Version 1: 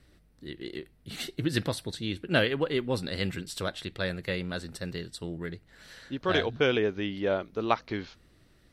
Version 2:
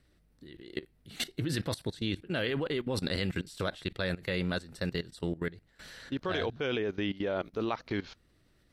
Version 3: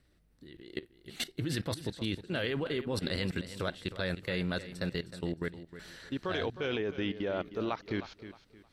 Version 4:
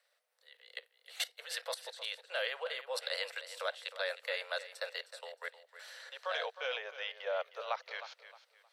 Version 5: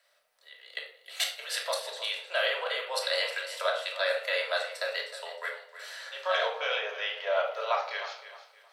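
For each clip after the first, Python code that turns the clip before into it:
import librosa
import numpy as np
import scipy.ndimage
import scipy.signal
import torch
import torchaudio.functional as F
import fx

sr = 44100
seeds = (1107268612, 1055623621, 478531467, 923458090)

y1 = fx.level_steps(x, sr, step_db=18)
y1 = y1 * librosa.db_to_amplitude(5.0)
y2 = fx.echo_feedback(y1, sr, ms=311, feedback_pct=29, wet_db=-13)
y2 = y2 * librosa.db_to_amplitude(-1.5)
y3 = scipy.signal.sosfilt(scipy.signal.butter(16, 490.0, 'highpass', fs=sr, output='sos'), y2)
y4 = fx.room_shoebox(y3, sr, seeds[0], volume_m3=880.0, walls='furnished', distance_m=2.9)
y4 = y4 * librosa.db_to_amplitude(5.0)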